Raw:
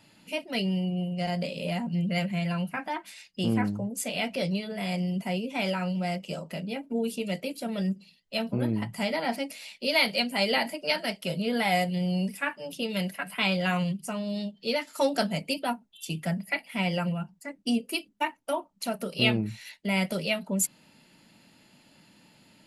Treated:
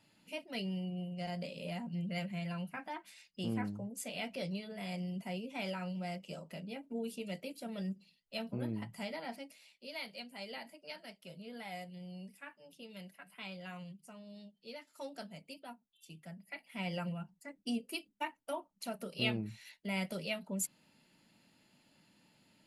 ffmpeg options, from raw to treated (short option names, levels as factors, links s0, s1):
-af "volume=0.944,afade=t=out:st=8.74:d=1.03:silence=0.334965,afade=t=in:st=16.43:d=0.5:silence=0.316228"